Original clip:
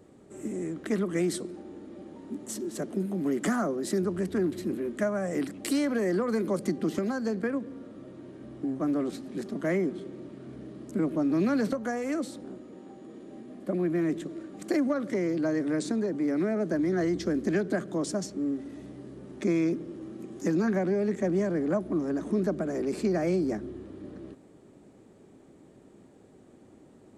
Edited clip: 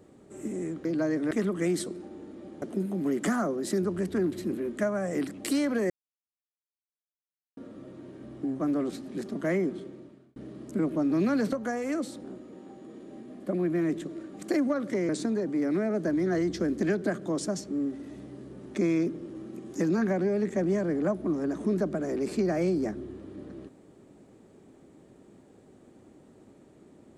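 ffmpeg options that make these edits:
-filter_complex "[0:a]asplit=8[a][b][c][d][e][f][g][h];[a]atrim=end=0.852[i];[b]atrim=start=15.288:end=15.752[j];[c]atrim=start=0.848:end=2.162[k];[d]atrim=start=2.818:end=6.1,asetpts=PTS-STARTPTS,afade=t=out:st=3.278:d=0.004:c=hsin[l];[e]atrim=start=6.1:end=7.77,asetpts=PTS-STARTPTS,volume=0[m];[f]atrim=start=7.77:end=10.56,asetpts=PTS-STARTPTS,afade=t=in:d=0.004:c=hsin,afade=t=out:st=2.18:d=0.61[n];[g]atrim=start=10.56:end=15.292,asetpts=PTS-STARTPTS,afade=t=in:d=0.004:c=hsin[o];[h]atrim=start=15.748[p];[i][j]acrossfade=d=0.004:c1=hsin:c2=hsin[q];[q][k]acrossfade=d=0.004:c1=hsin:c2=hsin[r];[l][m][n][o]concat=n=4:v=0:a=1[s];[r][s]acrossfade=d=0.004:c1=hsin:c2=hsin[t];[t][p]acrossfade=d=0.004:c1=hsin:c2=hsin"

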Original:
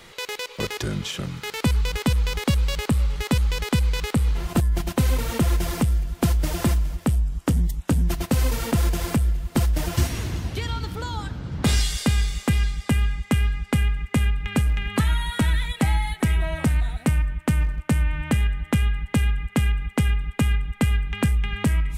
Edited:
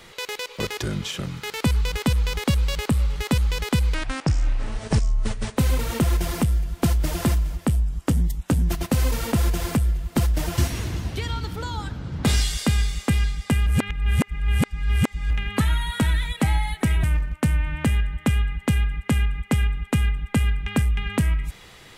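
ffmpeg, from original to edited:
-filter_complex "[0:a]asplit=6[a][b][c][d][e][f];[a]atrim=end=3.944[g];[b]atrim=start=3.94:end=4.97,asetpts=PTS-STARTPTS,asetrate=27783,aresample=44100[h];[c]atrim=start=4.966:end=13.062[i];[d]atrim=start=13.058:end=14.702,asetpts=PTS-STARTPTS,areverse[j];[e]atrim=start=14.698:end=16.432[k];[f]atrim=start=17.498[l];[g][h]acrossfade=d=0.004:c1=hsin:c2=hsin[m];[m][i]acrossfade=d=0.004:c1=hsin:c2=hsin[n];[n][j]acrossfade=d=0.004:c1=hsin:c2=hsin[o];[o][k]acrossfade=d=0.004:c1=hsin:c2=hsin[p];[p][l]acrossfade=d=0.004:c1=hsin:c2=hsin"

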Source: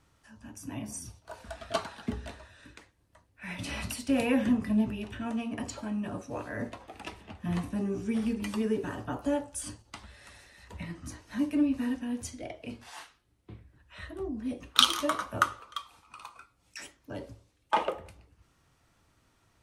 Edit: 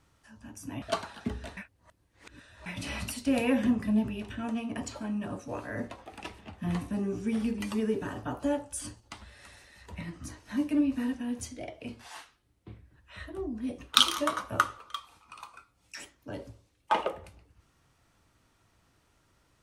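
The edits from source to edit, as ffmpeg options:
-filter_complex "[0:a]asplit=4[a][b][c][d];[a]atrim=end=0.822[e];[b]atrim=start=1.638:end=2.392[f];[c]atrim=start=2.388:end=3.482,asetpts=PTS-STARTPTS,areverse[g];[d]atrim=start=3.478[h];[e][f]acrossfade=d=0.004:c1=hsin:c2=hsin[i];[i][g]acrossfade=d=0.004:c1=hsin:c2=hsin[j];[j][h]acrossfade=d=0.004:c1=hsin:c2=hsin"

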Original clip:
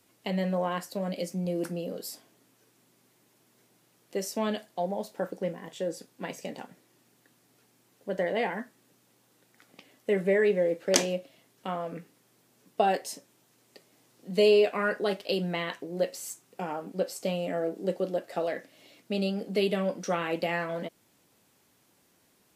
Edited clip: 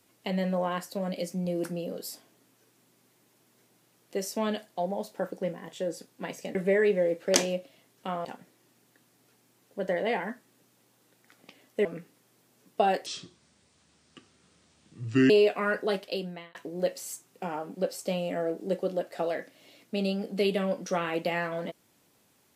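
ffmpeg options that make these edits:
-filter_complex "[0:a]asplit=7[a][b][c][d][e][f][g];[a]atrim=end=6.552[h];[b]atrim=start=10.148:end=11.852[i];[c]atrim=start=6.548:end=10.152[j];[d]atrim=start=11.848:end=13.064[k];[e]atrim=start=13.06:end=14.47,asetpts=PTS-STARTPTS,asetrate=27783,aresample=44100[l];[f]atrim=start=14.466:end=15.72,asetpts=PTS-STARTPTS,afade=t=out:st=0.654:d=0.6[m];[g]atrim=start=15.72,asetpts=PTS-STARTPTS,afade=t=in:d=0.004:c=hsin[n];[h][i]acrossfade=d=0.004:c1=hsin:c2=hsin[o];[o][j]acrossfade=d=0.004:c1=hsin:c2=hsin[p];[p][k]acrossfade=d=0.004:c1=hsin:c2=hsin[q];[q][l]acrossfade=d=0.004:c1=hsin:c2=hsin[r];[m][n]concat=n=2:v=0:a=1[s];[r][s]acrossfade=d=0.004:c1=hsin:c2=hsin"

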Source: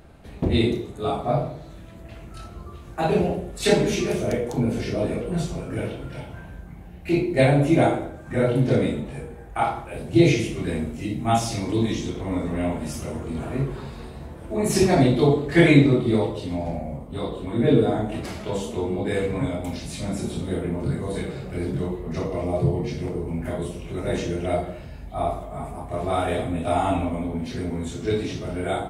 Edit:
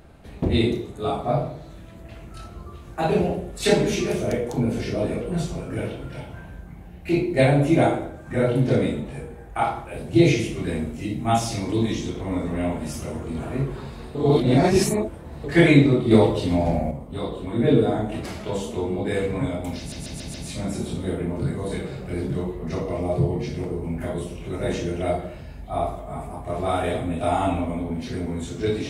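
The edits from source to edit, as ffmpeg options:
-filter_complex "[0:a]asplit=9[a][b][c][d][e][f][g][h][i];[a]atrim=end=14.152[j];[b]atrim=start=14.148:end=15.442,asetpts=PTS-STARTPTS,areverse[k];[c]atrim=start=15.438:end=16.112[l];[d]atrim=start=16.108:end=16.912,asetpts=PTS-STARTPTS,volume=6.5dB[m];[e]atrim=start=16.908:end=19.922[n];[f]atrim=start=19.778:end=19.922[o];[g]atrim=start=19.778:end=19.922[p];[h]atrim=start=19.778:end=19.922[q];[i]atrim=start=19.778[r];[j][k]acrossfade=d=0.004:c1=hsin:c2=hsin[s];[s][l]acrossfade=d=0.004:c1=hsin:c2=hsin[t];[t][m]acrossfade=d=0.004:c1=hsin:c2=hsin[u];[u][n]acrossfade=d=0.004:c1=hsin:c2=hsin[v];[v][o]acrossfade=d=0.004:c1=hsin:c2=hsin[w];[w][p]acrossfade=d=0.004:c1=hsin:c2=hsin[x];[x][q]acrossfade=d=0.004:c1=hsin:c2=hsin[y];[y][r]acrossfade=d=0.004:c1=hsin:c2=hsin"

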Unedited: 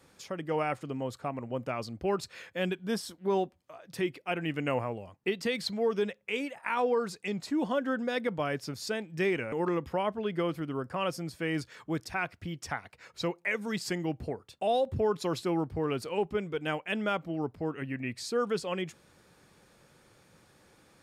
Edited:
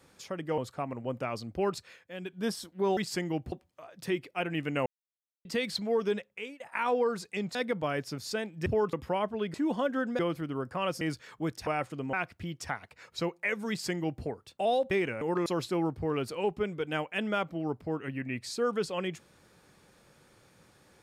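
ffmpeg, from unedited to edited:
-filter_complex "[0:a]asplit=19[a][b][c][d][e][f][g][h][i][j][k][l][m][n][o][p][q][r][s];[a]atrim=end=0.582[t];[b]atrim=start=1.038:end=2.45,asetpts=PTS-STARTPTS,afade=t=out:st=1.172:d=0.24:silence=0.298538[u];[c]atrim=start=2.45:end=2.66,asetpts=PTS-STARTPTS,volume=-10.5dB[v];[d]atrim=start=2.66:end=3.432,asetpts=PTS-STARTPTS,afade=t=in:d=0.24:silence=0.298538[w];[e]atrim=start=13.708:end=14.262[x];[f]atrim=start=3.428:end=4.77,asetpts=PTS-STARTPTS,afade=t=out:st=1.338:d=0.004:c=hsin[y];[g]atrim=start=4.77:end=5.36,asetpts=PTS-STARTPTS,volume=0[z];[h]atrim=start=5.36:end=6.51,asetpts=PTS-STARTPTS,afade=t=in:d=0.004:c=hsin,afade=t=out:st=0.72:d=0.43:silence=0.0841395[aa];[i]atrim=start=6.51:end=7.462,asetpts=PTS-STARTPTS,afade=t=in:d=0.004:c=hsin:silence=0.0841395[ab];[j]atrim=start=8.108:end=9.222[ac];[k]atrim=start=14.928:end=15.202[ad];[l]atrim=start=9.768:end=10.382[ae];[m]atrim=start=7.458:end=8.112[af];[n]atrim=start=10.378:end=11.202[ag];[o]atrim=start=11.488:end=12.152[ah];[p]atrim=start=0.578:end=1.042[ai];[q]atrim=start=12.148:end=14.932[aj];[r]atrim=start=9.218:end=9.772[ak];[s]atrim=start=15.198[al];[u][v][w]concat=n=3:v=0:a=1[am];[t][am]acrossfade=d=0.004:c1=hsin:c2=hsin[an];[an][x]acrossfade=d=0.004:c1=hsin:c2=hsin[ao];[y][z][aa][ab]concat=n=4:v=0:a=1[ap];[ao][ap]acrossfade=d=0.004:c1=hsin:c2=hsin[aq];[aq][ac]acrossfade=d=0.004:c1=hsin:c2=hsin[ar];[ar][ad]acrossfade=d=0.004:c1=hsin:c2=hsin[as];[as][ae]acrossfade=d=0.004:c1=hsin:c2=hsin[at];[at][af]acrossfade=d=0.004:c1=hsin:c2=hsin[au];[au][ag]acrossfade=d=0.004:c1=hsin:c2=hsin[av];[av][ah]acrossfade=d=0.004:c1=hsin:c2=hsin[aw];[aw][ai]acrossfade=d=0.004:c1=hsin:c2=hsin[ax];[ax][aj]acrossfade=d=0.004:c1=hsin:c2=hsin[ay];[ay][ak]acrossfade=d=0.004:c1=hsin:c2=hsin[az];[az][al]acrossfade=d=0.004:c1=hsin:c2=hsin"

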